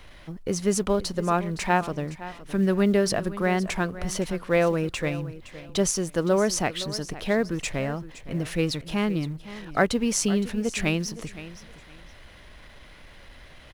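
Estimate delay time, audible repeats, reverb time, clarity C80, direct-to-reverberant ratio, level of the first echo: 0.515 s, 2, none, none, none, -15.5 dB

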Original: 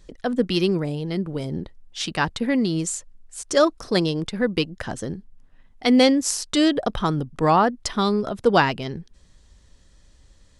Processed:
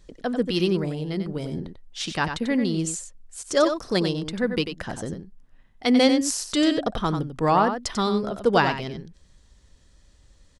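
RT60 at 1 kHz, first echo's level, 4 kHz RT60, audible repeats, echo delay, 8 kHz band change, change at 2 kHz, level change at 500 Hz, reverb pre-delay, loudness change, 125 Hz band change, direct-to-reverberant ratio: none, -8.0 dB, none, 1, 93 ms, -2.0 dB, -2.0 dB, -2.0 dB, none, -2.0 dB, -2.0 dB, none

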